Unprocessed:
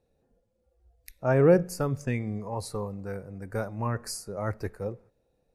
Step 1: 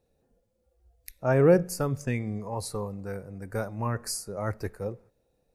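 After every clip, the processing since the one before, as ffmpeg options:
ffmpeg -i in.wav -af "highshelf=frequency=5300:gain=5" out.wav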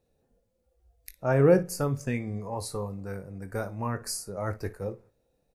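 ffmpeg -i in.wav -af "aecho=1:1:21|58:0.282|0.133,volume=-1dB" out.wav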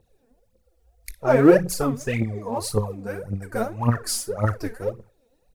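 ffmpeg -i in.wav -af "aphaser=in_gain=1:out_gain=1:delay=4.6:decay=0.77:speed=1.8:type=triangular,volume=3.5dB" out.wav

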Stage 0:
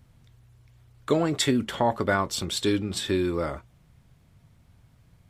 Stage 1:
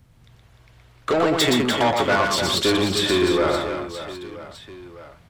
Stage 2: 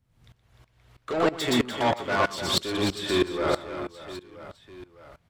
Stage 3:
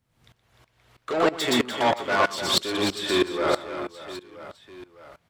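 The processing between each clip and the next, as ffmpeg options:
ffmpeg -i in.wav -filter_complex "[0:a]acrossover=split=360|5200[link_01][link_02][link_03];[link_02]dynaudnorm=framelen=180:gausssize=3:maxgain=9dB[link_04];[link_01][link_04][link_03]amix=inputs=3:normalize=0,asoftclip=type=tanh:threshold=-18dB,aecho=1:1:120|300|570|975|1582:0.631|0.398|0.251|0.158|0.1,volume=2.5dB" out.wav
ffmpeg -i in.wav -af "aeval=exprs='val(0)*pow(10,-19*if(lt(mod(-3.1*n/s,1),2*abs(-3.1)/1000),1-mod(-3.1*n/s,1)/(2*abs(-3.1)/1000),(mod(-3.1*n/s,1)-2*abs(-3.1)/1000)/(1-2*abs(-3.1)/1000))/20)':channel_layout=same" out.wav
ffmpeg -i in.wav -af "lowshelf=frequency=150:gain=-12,volume=3dB" out.wav

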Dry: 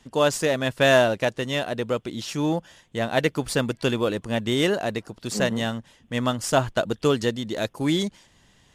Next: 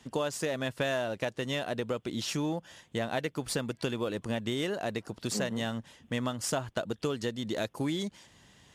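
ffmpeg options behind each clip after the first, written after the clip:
ffmpeg -i in.wav -af "highpass=60,acompressor=threshold=-29dB:ratio=6" out.wav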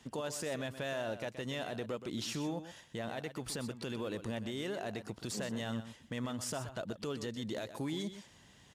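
ffmpeg -i in.wav -af "alimiter=level_in=3.5dB:limit=-24dB:level=0:latency=1:release=39,volume=-3.5dB,aecho=1:1:124:0.266,volume=-2.5dB" out.wav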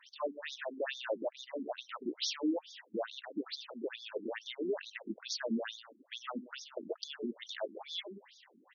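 ffmpeg -i in.wav -filter_complex "[0:a]acrossover=split=310[link_01][link_02];[link_01]acrusher=samples=12:mix=1:aa=0.000001:lfo=1:lforange=7.2:lforate=3.9[link_03];[link_03][link_02]amix=inputs=2:normalize=0,afftfilt=real='re*between(b*sr/1024,260*pow(4800/260,0.5+0.5*sin(2*PI*2.3*pts/sr))/1.41,260*pow(4800/260,0.5+0.5*sin(2*PI*2.3*pts/sr))*1.41)':imag='im*between(b*sr/1024,260*pow(4800/260,0.5+0.5*sin(2*PI*2.3*pts/sr))/1.41,260*pow(4800/260,0.5+0.5*sin(2*PI*2.3*pts/sr))*1.41)':win_size=1024:overlap=0.75,volume=7.5dB" out.wav

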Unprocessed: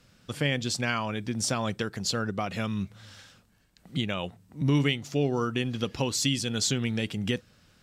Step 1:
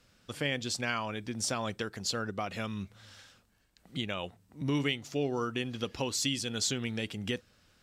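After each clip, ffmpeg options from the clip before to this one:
ffmpeg -i in.wav -af "equalizer=frequency=150:width_type=o:width=1.2:gain=-6,volume=-3.5dB" out.wav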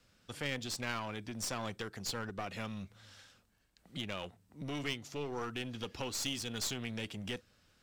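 ffmpeg -i in.wav -filter_complex "[0:a]acrossover=split=420|1400|7200[link_01][link_02][link_03][link_04];[link_01]alimiter=level_in=7.5dB:limit=-24dB:level=0:latency=1,volume=-7.5dB[link_05];[link_05][link_02][link_03][link_04]amix=inputs=4:normalize=0,aeval=exprs='clip(val(0),-1,0.0178)':channel_layout=same,volume=-3.5dB" out.wav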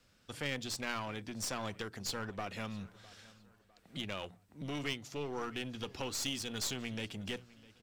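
ffmpeg -i in.wav -filter_complex "[0:a]bandreject=frequency=60:width_type=h:width=6,bandreject=frequency=120:width_type=h:width=6,bandreject=frequency=180:width_type=h:width=6,asplit=2[link_01][link_02];[link_02]adelay=655,lowpass=frequency=4000:poles=1,volume=-20.5dB,asplit=2[link_03][link_04];[link_04]adelay=655,lowpass=frequency=4000:poles=1,volume=0.43,asplit=2[link_05][link_06];[link_06]adelay=655,lowpass=frequency=4000:poles=1,volume=0.43[link_07];[link_01][link_03][link_05][link_07]amix=inputs=4:normalize=0" out.wav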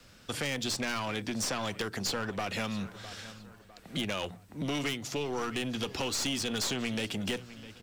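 ffmpeg -i in.wav -filter_complex "[0:a]acrossover=split=170|2500|7400[link_01][link_02][link_03][link_04];[link_01]acompressor=threshold=-55dB:ratio=4[link_05];[link_02]acompressor=threshold=-43dB:ratio=4[link_06];[link_03]acompressor=threshold=-45dB:ratio=4[link_07];[link_04]acompressor=threshold=-54dB:ratio=4[link_08];[link_05][link_06][link_07][link_08]amix=inputs=4:normalize=0,asplit=2[link_09][link_10];[link_10]aeval=exprs='0.0531*sin(PI/2*3.16*val(0)/0.0531)':channel_layout=same,volume=-4dB[link_11];[link_09][link_11]amix=inputs=2:normalize=0" out.wav

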